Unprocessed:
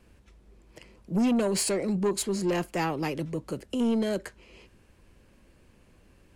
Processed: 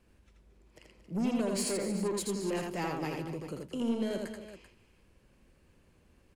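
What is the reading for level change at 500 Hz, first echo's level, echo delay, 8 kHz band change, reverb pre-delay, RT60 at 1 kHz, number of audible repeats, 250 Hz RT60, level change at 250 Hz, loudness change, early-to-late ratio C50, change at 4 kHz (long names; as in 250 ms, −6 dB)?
−5.5 dB, −3.5 dB, 82 ms, −5.5 dB, no reverb audible, no reverb audible, 4, no reverb audible, −6.0 dB, −6.0 dB, no reverb audible, −5.5 dB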